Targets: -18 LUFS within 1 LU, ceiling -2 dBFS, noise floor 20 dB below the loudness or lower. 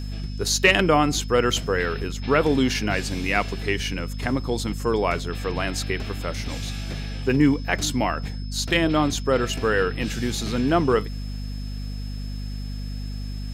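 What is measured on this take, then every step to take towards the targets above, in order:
hum 50 Hz; highest harmonic 250 Hz; hum level -28 dBFS; steady tone 5.2 kHz; tone level -45 dBFS; loudness -24.0 LUFS; peak level -4.0 dBFS; loudness target -18.0 LUFS
-> hum notches 50/100/150/200/250 Hz; band-stop 5.2 kHz, Q 30; trim +6 dB; peak limiter -2 dBFS

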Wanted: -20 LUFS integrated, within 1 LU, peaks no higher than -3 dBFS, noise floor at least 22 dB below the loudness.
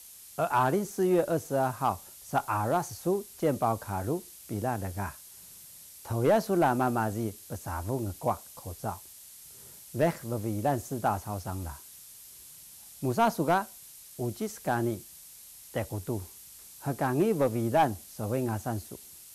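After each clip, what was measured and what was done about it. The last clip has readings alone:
clipped samples 0.2%; clipping level -17.0 dBFS; noise floor -50 dBFS; noise floor target -53 dBFS; loudness -30.5 LUFS; peak level -17.0 dBFS; loudness target -20.0 LUFS
-> clip repair -17 dBFS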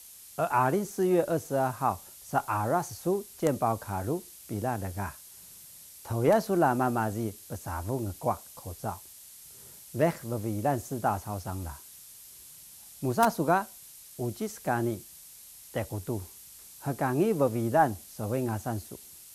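clipped samples 0.0%; noise floor -50 dBFS; noise floor target -52 dBFS
-> noise reduction 6 dB, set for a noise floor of -50 dBFS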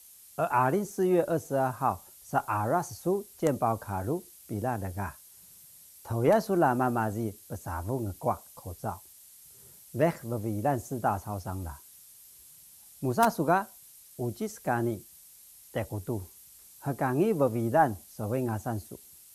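noise floor -54 dBFS; loudness -30.0 LUFS; peak level -8.0 dBFS; loudness target -20.0 LUFS
-> trim +10 dB; peak limiter -3 dBFS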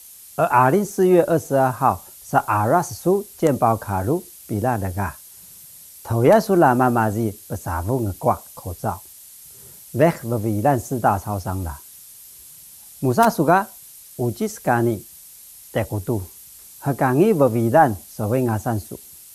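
loudness -20.5 LUFS; peak level -3.0 dBFS; noise floor -44 dBFS

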